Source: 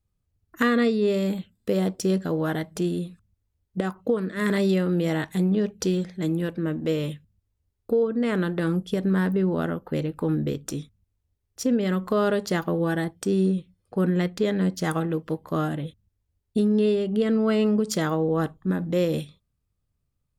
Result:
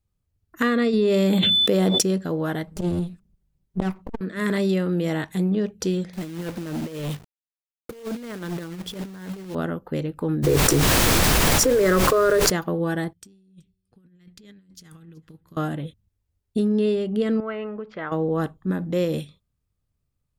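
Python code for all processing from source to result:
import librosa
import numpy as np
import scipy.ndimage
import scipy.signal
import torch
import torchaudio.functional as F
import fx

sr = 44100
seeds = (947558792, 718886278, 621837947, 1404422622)

y = fx.highpass(x, sr, hz=150.0, slope=12, at=(0.92, 2.01), fade=0.02)
y = fx.dmg_tone(y, sr, hz=3500.0, level_db=-50.0, at=(0.92, 2.01), fade=0.02)
y = fx.env_flatten(y, sr, amount_pct=100, at=(0.92, 2.01), fade=0.02)
y = fx.chain(y, sr, fx.lower_of_two(delay_ms=5.2),
    fx.low_shelf(hz=280.0, db=8.5),
    fx.transformer_sat(knee_hz=320.0), at=(2.67, 4.21))
y = fx.chain(y, sr, fx.quant_companded(bits=4),
    fx.over_compress(threshold_db=-29.0, ratio=-0.5),
    fx.clip_hard(threshold_db=-25.0), at=(6.13, 9.55))
y = fx.fixed_phaser(y, sr, hz=830.0, stages=6, at=(10.42, 12.5), fade=0.02)
y = fx.dmg_noise_colour(y, sr, seeds[0], colour='pink', level_db=-45.0, at=(10.42, 12.5), fade=0.02)
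y = fx.env_flatten(y, sr, amount_pct=100, at=(10.42, 12.5), fade=0.02)
y = fx.chain(y, sr, fx.tone_stack(knobs='6-0-2'),
    fx.over_compress(threshold_db=-47.0, ratio=-0.5),
    fx.echo_single(ms=377, db=-23.5), at=(13.13, 15.57))
y = fx.chain(y, sr, fx.lowpass(hz=2300.0, slope=24),
    fx.peak_eq(hz=170.0, db=-14.5, octaves=2.8), at=(17.4, 18.12))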